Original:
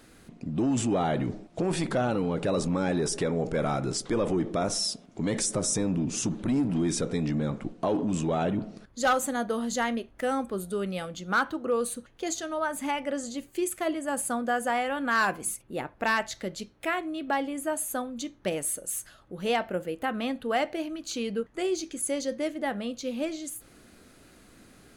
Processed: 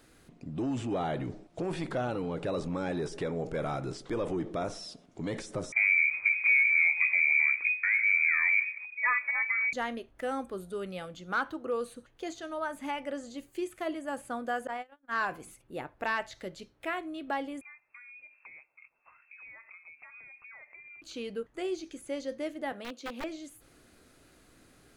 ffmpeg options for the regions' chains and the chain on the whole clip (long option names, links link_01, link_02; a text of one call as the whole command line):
ffmpeg -i in.wav -filter_complex "[0:a]asettb=1/sr,asplit=3[link_01][link_02][link_03];[link_01]atrim=end=5.724[link_04];[link_02]atrim=start=5.72:end=9.73,asetpts=PTS-STARTPTS,afade=type=in:duration=0.004:curve=qsin,afade=type=out:start_time=4.006:duration=0.004:curve=qsin,aemphasis=mode=reproduction:type=riaa,lowpass=frequency=2100:width_type=q:width=0.5098,lowpass=frequency=2100:width_type=q:width=0.6013,lowpass=frequency=2100:width_type=q:width=0.9,lowpass=frequency=2100:width_type=q:width=2.563,afreqshift=-2500[link_05];[link_03]atrim=start=9.726[link_06];[link_04][link_05]acrossfade=duration=0.004:curve1=hsin:curve2=qsin[link_07];[link_07][link_06]acrossfade=duration=0.004:curve1=qsin:curve2=hsin,asettb=1/sr,asplit=3[link_08][link_09][link_10];[link_08]atrim=end=14.674[link_11];[link_09]atrim=start=14.67:end=15.31,asetpts=PTS-STARTPTS,afade=type=in:duration=0.004:curve=qsin,afade=type=out:start_time=0.636:duration=0.004:curve=qsin,highshelf=frequency=3800:gain=-7,agate=range=-40dB:threshold=-27dB:ratio=16:release=100:detection=peak[link_12];[link_10]atrim=start=15.306[link_13];[link_11][link_12]acrossfade=duration=0.004:curve1=hsin:curve2=qsin[link_14];[link_14][link_13]acrossfade=duration=0.004:curve1=qsin:curve2=hsin,asettb=1/sr,asplit=3[link_15][link_16][link_17];[link_15]atrim=end=17.614[link_18];[link_16]atrim=start=17.61:end=21.02,asetpts=PTS-STARTPTS,afade=type=in:duration=0.004:curve=qsin,afade=type=out:start_time=3.406:duration=0.004:curve=qsin,acompressor=threshold=-42dB:ratio=12:attack=3.2:release=140:knee=1:detection=peak,lowpass=frequency=2300:width_type=q:width=0.5098,lowpass=frequency=2300:width_type=q:width=0.6013,lowpass=frequency=2300:width_type=q:width=0.9,lowpass=frequency=2300:width_type=q:width=2.563,afreqshift=-2700[link_19];[link_17]atrim=start=21.016[link_20];[link_18][link_19]acrossfade=duration=0.004:curve1=hsin:curve2=qsin[link_21];[link_21][link_20]acrossfade=duration=0.004:curve1=qsin:curve2=hsin,asettb=1/sr,asplit=3[link_22][link_23][link_24];[link_22]atrim=end=22.724[link_25];[link_23]atrim=start=22.72:end=23.24,asetpts=PTS-STARTPTS,afade=type=in:duration=0.004:curve=qsin,afade=type=out:start_time=0.516:duration=0.004:curve=qsin,highpass=frequency=200:width=0.5412,highpass=frequency=200:width=1.3066,aeval=exprs='(mod(18.8*val(0)+1,2)-1)/18.8':channel_layout=same[link_26];[link_24]atrim=start=23.236[link_27];[link_25][link_26]acrossfade=duration=0.004:curve1=hsin:curve2=qsin[link_28];[link_28][link_27]acrossfade=duration=0.004:curve1=qsin:curve2=hsin,acrossover=split=4000[link_29][link_30];[link_30]acompressor=threshold=-48dB:ratio=4:attack=1:release=60[link_31];[link_29][link_31]amix=inputs=2:normalize=0,equalizer=frequency=210:width=4.4:gain=-7,volume=-5dB" out.wav